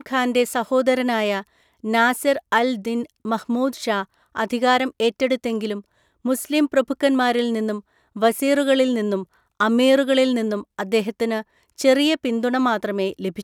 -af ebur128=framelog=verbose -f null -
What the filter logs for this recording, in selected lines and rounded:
Integrated loudness:
  I:         -20.9 LUFS
  Threshold: -31.2 LUFS
Loudness range:
  LRA:         2.8 LU
  Threshold: -41.2 LUFS
  LRA low:   -22.7 LUFS
  LRA high:  -19.9 LUFS